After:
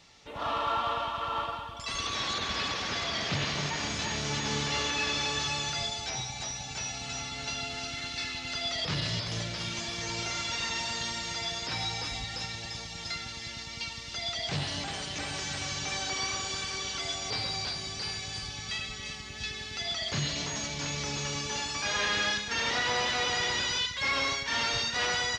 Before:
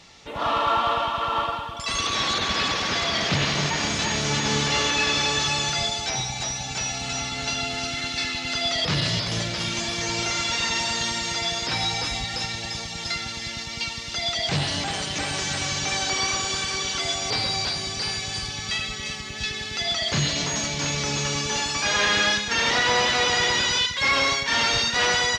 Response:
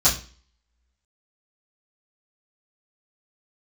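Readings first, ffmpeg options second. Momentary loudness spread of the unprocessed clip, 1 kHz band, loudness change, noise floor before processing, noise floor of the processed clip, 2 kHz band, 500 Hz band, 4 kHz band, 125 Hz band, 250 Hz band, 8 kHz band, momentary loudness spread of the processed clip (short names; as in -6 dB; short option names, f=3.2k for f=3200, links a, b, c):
8 LU, -8.0 dB, -8.0 dB, -33 dBFS, -41 dBFS, -8.0 dB, -8.5 dB, -7.5 dB, -7.0 dB, -8.5 dB, -8.0 dB, 8 LU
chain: -filter_complex "[0:a]acrossover=split=9600[a][b];[b]acompressor=threshold=-59dB:ratio=4:attack=1:release=60[c];[a][c]amix=inputs=2:normalize=0,asplit=2[d][e];[1:a]atrim=start_sample=2205[f];[e][f]afir=irnorm=-1:irlink=0,volume=-32.5dB[g];[d][g]amix=inputs=2:normalize=0,volume=-8dB"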